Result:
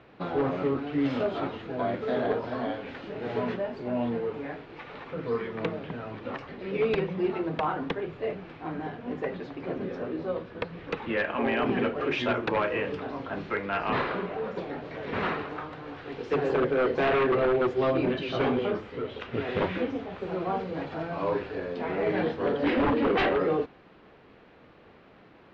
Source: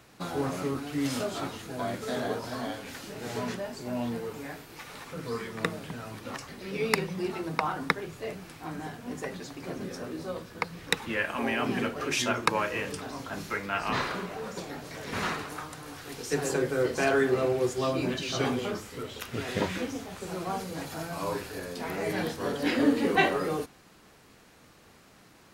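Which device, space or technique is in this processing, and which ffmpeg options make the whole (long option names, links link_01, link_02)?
synthesiser wavefolder: -af "equalizer=frequency=460:width=0.85:gain=6,aeval=exprs='0.119*(abs(mod(val(0)/0.119+3,4)-2)-1)':channel_layout=same,lowpass=frequency=3300:width=0.5412,lowpass=frequency=3300:width=1.3066"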